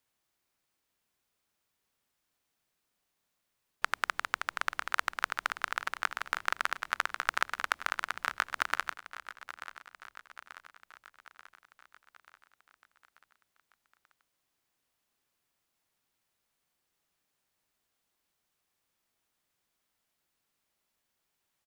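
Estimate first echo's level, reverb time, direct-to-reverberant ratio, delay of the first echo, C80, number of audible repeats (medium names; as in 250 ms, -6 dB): -14.0 dB, no reverb, no reverb, 886 ms, no reverb, 5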